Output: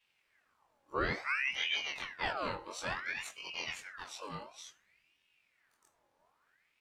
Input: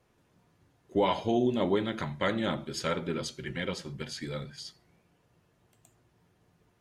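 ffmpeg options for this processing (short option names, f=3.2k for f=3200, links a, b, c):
-af "afftfilt=real='re':imag='-im':win_size=2048:overlap=0.75,aeval=exprs='val(0)*sin(2*PI*1700*n/s+1700*0.6/0.57*sin(2*PI*0.57*n/s))':c=same"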